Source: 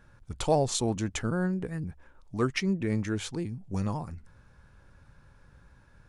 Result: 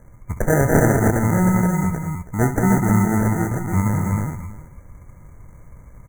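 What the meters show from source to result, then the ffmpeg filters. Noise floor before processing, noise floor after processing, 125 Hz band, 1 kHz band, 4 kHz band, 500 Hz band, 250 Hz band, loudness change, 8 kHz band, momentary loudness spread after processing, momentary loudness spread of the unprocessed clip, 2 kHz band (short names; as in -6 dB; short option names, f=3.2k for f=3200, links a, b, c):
-59 dBFS, -45 dBFS, +14.0 dB, +11.5 dB, under -40 dB, +9.0 dB, +12.0 dB, +11.5 dB, +7.0 dB, 11 LU, 14 LU, +12.5 dB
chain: -filter_complex "[0:a]bass=f=250:g=8,treble=f=4k:g=12,acrusher=samples=40:mix=1:aa=0.000001,afftfilt=real='re*(1-between(b*sr/4096,2300,5900))':imag='im*(1-between(b*sr/4096,2300,5900))':win_size=4096:overlap=0.75,asplit=2[a][b];[b]aecho=0:1:66|196|312|637:0.266|0.501|0.668|0.106[c];[a][c]amix=inputs=2:normalize=0,volume=4.5dB"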